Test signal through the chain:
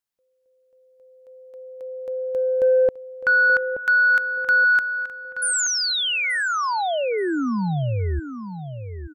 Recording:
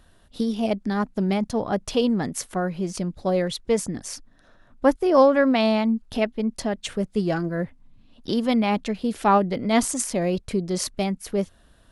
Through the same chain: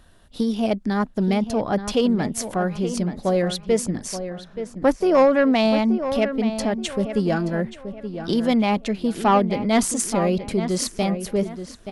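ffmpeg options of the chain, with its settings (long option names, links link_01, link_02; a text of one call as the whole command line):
ffmpeg -i in.wav -filter_complex "[0:a]asoftclip=type=tanh:threshold=-11dB,asplit=2[link_01][link_02];[link_02]adelay=877,lowpass=frequency=2900:poles=1,volume=-10dB,asplit=2[link_03][link_04];[link_04]adelay=877,lowpass=frequency=2900:poles=1,volume=0.35,asplit=2[link_05][link_06];[link_06]adelay=877,lowpass=frequency=2900:poles=1,volume=0.35,asplit=2[link_07][link_08];[link_08]adelay=877,lowpass=frequency=2900:poles=1,volume=0.35[link_09];[link_01][link_03][link_05][link_07][link_09]amix=inputs=5:normalize=0,volume=2.5dB" out.wav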